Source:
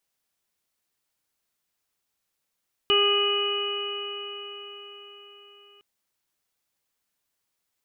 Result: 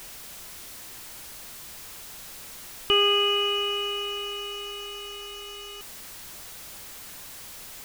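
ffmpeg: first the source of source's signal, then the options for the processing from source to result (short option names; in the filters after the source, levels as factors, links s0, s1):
-f lavfi -i "aevalsrc='0.0794*pow(10,-3*t/4.87)*sin(2*PI*405.3*t)+0.0133*pow(10,-3*t/4.87)*sin(2*PI*812.43*t)+0.0531*pow(10,-3*t/4.87)*sin(2*PI*1223.17*t)+0.00891*pow(10,-3*t/4.87)*sin(2*PI*1639.32*t)+0.00944*pow(10,-3*t/4.87)*sin(2*PI*2062.62*t)+0.0398*pow(10,-3*t/4.87)*sin(2*PI*2494.75*t)+0.112*pow(10,-3*t/4.87)*sin(2*PI*2937.34*t)':d=2.91:s=44100"
-af "aeval=exprs='val(0)+0.5*0.0158*sgn(val(0))':c=same,lowshelf=f=77:g=9"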